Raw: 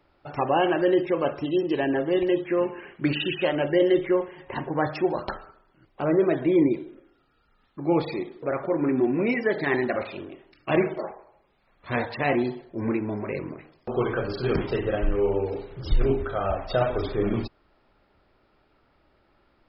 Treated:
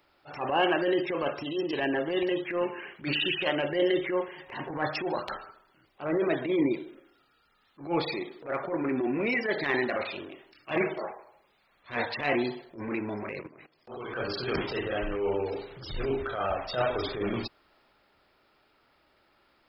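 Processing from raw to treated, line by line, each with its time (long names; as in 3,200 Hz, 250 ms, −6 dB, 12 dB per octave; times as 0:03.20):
0:13.29–0:14.14: output level in coarse steps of 17 dB
whole clip: spectral tilt +2.5 dB per octave; transient designer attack −12 dB, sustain +1 dB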